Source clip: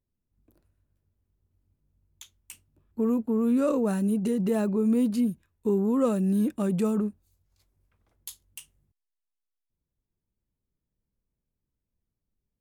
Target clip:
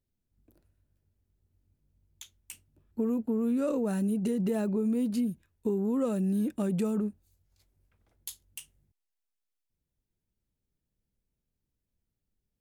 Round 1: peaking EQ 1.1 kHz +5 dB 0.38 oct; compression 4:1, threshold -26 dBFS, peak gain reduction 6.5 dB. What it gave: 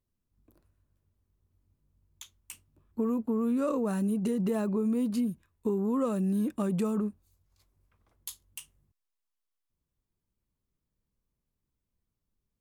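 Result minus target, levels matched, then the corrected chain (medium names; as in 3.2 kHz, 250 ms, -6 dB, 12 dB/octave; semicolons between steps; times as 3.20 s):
1 kHz band +4.5 dB
peaking EQ 1.1 kHz -5 dB 0.38 oct; compression 4:1, threshold -26 dBFS, peak gain reduction 6.5 dB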